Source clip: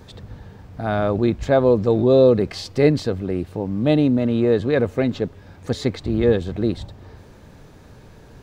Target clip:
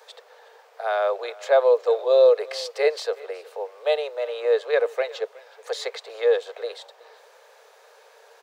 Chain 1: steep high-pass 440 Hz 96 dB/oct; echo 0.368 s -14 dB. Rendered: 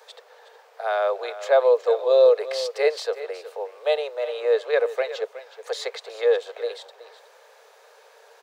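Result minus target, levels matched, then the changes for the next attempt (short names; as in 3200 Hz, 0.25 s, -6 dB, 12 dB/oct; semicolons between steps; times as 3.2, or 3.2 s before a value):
echo-to-direct +7.5 dB
change: echo 0.368 s -21.5 dB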